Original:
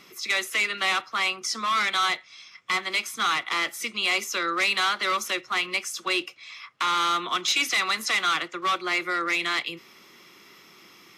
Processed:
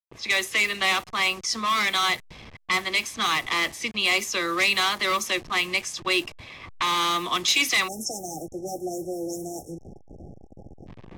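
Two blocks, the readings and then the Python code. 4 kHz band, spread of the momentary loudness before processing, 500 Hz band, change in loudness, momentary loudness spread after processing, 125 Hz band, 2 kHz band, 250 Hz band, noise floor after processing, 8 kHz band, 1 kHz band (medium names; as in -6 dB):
+1.5 dB, 6 LU, +3.0 dB, +1.0 dB, 13 LU, +8.5 dB, +0.5 dB, +4.5 dB, -49 dBFS, +2.5 dB, -1.0 dB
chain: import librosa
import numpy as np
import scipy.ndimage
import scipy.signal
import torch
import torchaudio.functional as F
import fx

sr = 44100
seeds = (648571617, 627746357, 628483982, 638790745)

y = fx.delta_hold(x, sr, step_db=-40.0)
y = fx.env_lowpass(y, sr, base_hz=2500.0, full_db=-21.5)
y = fx.peak_eq(y, sr, hz=100.0, db=7.5, octaves=2.2)
y = fx.notch(y, sr, hz=1400.0, q=5.1)
y = fx.spec_erase(y, sr, start_s=7.88, length_s=2.99, low_hz=850.0, high_hz=5300.0)
y = fx.high_shelf(y, sr, hz=12000.0, db=7.5)
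y = F.gain(torch.from_numpy(y), 2.0).numpy()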